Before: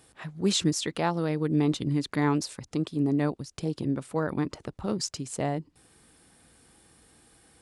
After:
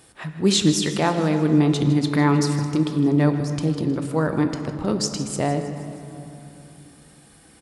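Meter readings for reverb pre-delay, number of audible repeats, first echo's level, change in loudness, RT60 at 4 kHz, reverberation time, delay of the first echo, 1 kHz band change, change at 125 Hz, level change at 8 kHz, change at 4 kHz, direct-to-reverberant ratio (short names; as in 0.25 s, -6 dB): 3 ms, 4, -14.5 dB, +7.5 dB, 1.8 s, 2.9 s, 0.157 s, +6.5 dB, +9.0 dB, +6.5 dB, +7.0 dB, 5.5 dB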